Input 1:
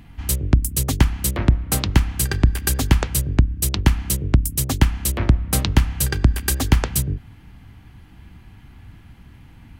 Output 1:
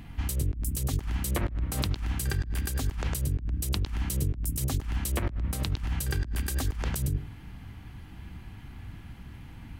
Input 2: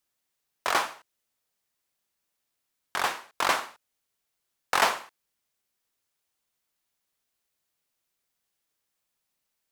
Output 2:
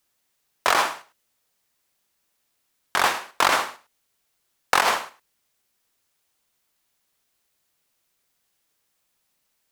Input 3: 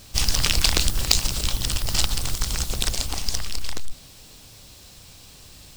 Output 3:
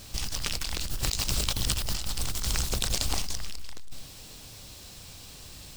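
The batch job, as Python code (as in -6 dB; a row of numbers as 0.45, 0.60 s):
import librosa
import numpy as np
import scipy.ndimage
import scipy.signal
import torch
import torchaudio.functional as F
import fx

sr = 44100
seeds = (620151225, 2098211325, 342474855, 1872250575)

y = x + 10.0 ** (-16.5 / 20.0) * np.pad(x, (int(105 * sr / 1000.0), 0))[:len(x)]
y = fx.over_compress(y, sr, threshold_db=-25.0, ratio=-1.0)
y = y * 10.0 ** (-30 / 20.0) / np.sqrt(np.mean(np.square(y)))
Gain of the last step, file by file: -5.0, +6.5, -3.5 dB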